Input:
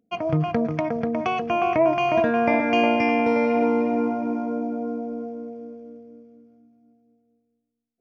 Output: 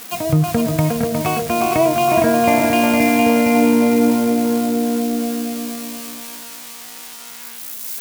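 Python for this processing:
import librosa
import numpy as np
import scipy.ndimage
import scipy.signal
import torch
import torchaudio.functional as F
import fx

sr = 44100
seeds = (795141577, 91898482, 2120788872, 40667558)

y = x + 0.5 * 10.0 ** (-19.0 / 20.0) * np.diff(np.sign(x), prepend=np.sign(x[:1]))
y = fx.low_shelf(y, sr, hz=150.0, db=10.5)
y = fx.echo_feedback(y, sr, ms=461, feedback_pct=27, wet_db=-4.5)
y = F.gain(torch.from_numpy(y), 2.5).numpy()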